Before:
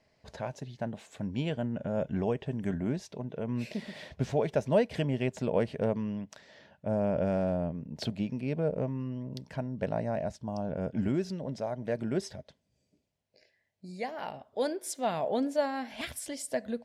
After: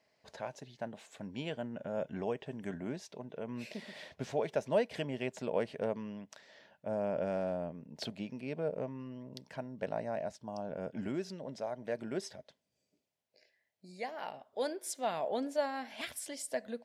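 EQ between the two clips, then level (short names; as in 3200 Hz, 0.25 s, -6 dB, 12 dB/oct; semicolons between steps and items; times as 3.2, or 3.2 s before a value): HPF 390 Hz 6 dB/oct; -2.5 dB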